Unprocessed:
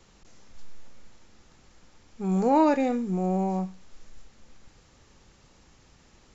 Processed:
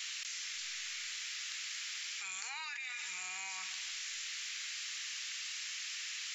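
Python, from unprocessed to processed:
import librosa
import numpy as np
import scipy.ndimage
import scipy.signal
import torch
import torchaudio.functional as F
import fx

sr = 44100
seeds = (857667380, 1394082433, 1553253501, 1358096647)

y = scipy.signal.sosfilt(scipy.signal.cheby2(4, 60, 620.0, 'highpass', fs=sr, output='sos'), x)
y = fx.high_shelf(y, sr, hz=3500.0, db=-7.5)
y = fx.echo_feedback(y, sr, ms=159, feedback_pct=54, wet_db=-21.5)
y = fx.env_flatten(y, sr, amount_pct=100)
y = y * 10.0 ** (1.0 / 20.0)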